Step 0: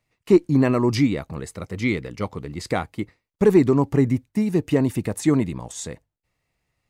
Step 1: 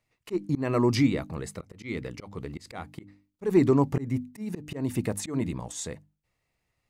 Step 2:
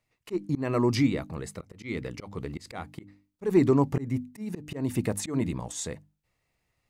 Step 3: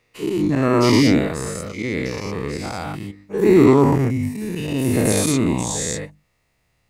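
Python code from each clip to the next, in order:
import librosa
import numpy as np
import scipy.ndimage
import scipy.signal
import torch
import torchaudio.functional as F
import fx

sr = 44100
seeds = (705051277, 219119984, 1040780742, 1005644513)

y1 = fx.hum_notches(x, sr, base_hz=50, count=6)
y1 = fx.auto_swell(y1, sr, attack_ms=218.0)
y1 = y1 * librosa.db_to_amplitude(-2.5)
y2 = fx.rider(y1, sr, range_db=4, speed_s=2.0)
y2 = y2 * librosa.db_to_amplitude(-2.5)
y3 = fx.spec_dilate(y2, sr, span_ms=240)
y3 = y3 * librosa.db_to_amplitude(3.5)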